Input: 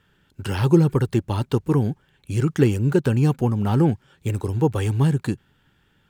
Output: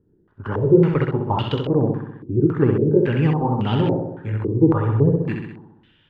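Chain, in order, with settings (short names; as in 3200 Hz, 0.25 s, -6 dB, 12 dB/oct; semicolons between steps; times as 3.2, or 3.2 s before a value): repeated pitch sweeps +1.5 st, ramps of 0.327 s; on a send: flutter echo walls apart 11.1 m, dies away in 0.92 s; on the sum: stepped low-pass 3.6 Hz 350–3000 Hz; gain -1 dB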